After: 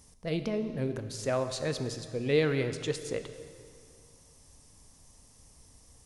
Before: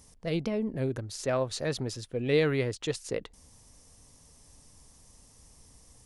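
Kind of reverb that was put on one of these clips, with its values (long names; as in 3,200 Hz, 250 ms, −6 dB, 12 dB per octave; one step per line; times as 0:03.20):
dense smooth reverb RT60 2.3 s, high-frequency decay 0.9×, DRR 8.5 dB
level −1.5 dB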